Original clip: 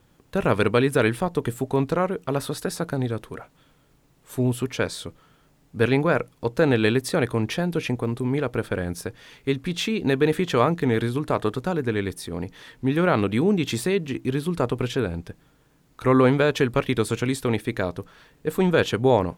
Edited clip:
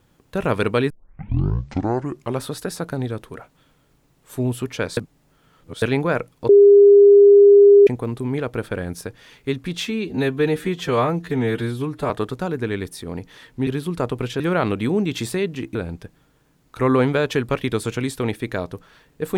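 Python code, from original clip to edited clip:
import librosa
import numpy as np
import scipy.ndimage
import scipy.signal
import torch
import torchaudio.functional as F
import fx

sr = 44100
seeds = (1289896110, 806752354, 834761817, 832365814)

y = fx.edit(x, sr, fx.tape_start(start_s=0.9, length_s=1.56),
    fx.reverse_span(start_s=4.97, length_s=0.85),
    fx.bleep(start_s=6.49, length_s=1.38, hz=404.0, db=-6.0),
    fx.stretch_span(start_s=9.85, length_s=1.5, factor=1.5),
    fx.move(start_s=14.27, length_s=0.73, to_s=12.92), tone=tone)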